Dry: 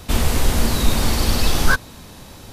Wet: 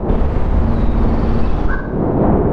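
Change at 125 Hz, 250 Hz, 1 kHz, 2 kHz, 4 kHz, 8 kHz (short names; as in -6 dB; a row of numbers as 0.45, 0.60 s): +6.0 dB, +9.0 dB, +4.0 dB, -6.5 dB, -19.0 dB, under -30 dB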